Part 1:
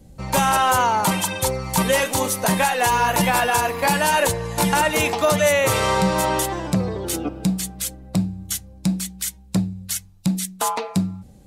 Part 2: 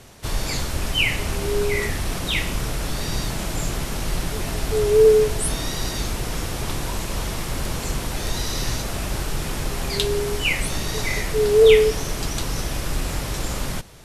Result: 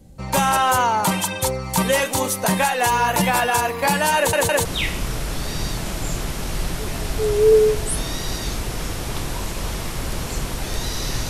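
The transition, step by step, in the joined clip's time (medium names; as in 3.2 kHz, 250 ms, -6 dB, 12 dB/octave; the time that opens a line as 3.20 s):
part 1
4.17 s: stutter in place 0.16 s, 3 plays
4.65 s: go over to part 2 from 2.18 s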